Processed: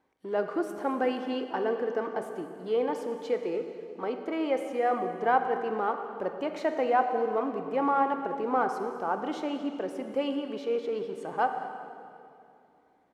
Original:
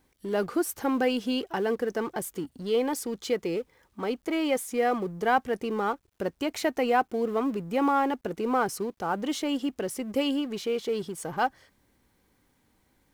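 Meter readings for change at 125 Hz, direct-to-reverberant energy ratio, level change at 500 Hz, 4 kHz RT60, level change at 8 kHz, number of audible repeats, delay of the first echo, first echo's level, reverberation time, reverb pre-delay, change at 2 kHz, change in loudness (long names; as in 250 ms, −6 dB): −7.5 dB, 6.0 dB, −0.5 dB, 2.2 s, below −15 dB, 1, 215 ms, −18.5 dB, 2.7 s, 24 ms, −3.0 dB, −1.5 dB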